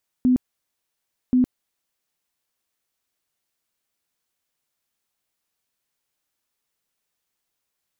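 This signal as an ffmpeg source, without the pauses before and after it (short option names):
-f lavfi -i "aevalsrc='0.211*sin(2*PI*252*mod(t,1.08))*lt(mod(t,1.08),28/252)':d=2.16:s=44100"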